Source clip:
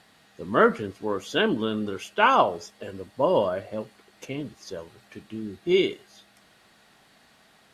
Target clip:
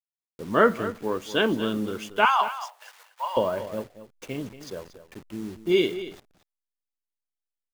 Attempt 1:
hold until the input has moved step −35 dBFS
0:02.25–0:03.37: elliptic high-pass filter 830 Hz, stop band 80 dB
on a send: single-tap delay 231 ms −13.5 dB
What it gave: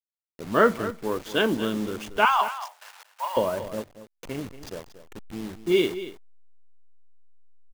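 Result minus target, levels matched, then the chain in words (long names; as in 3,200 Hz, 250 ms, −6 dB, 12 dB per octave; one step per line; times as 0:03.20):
hold until the input has moved: distortion +8 dB
hold until the input has moved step −42.5 dBFS
0:02.25–0:03.37: elliptic high-pass filter 830 Hz, stop band 80 dB
on a send: single-tap delay 231 ms −13.5 dB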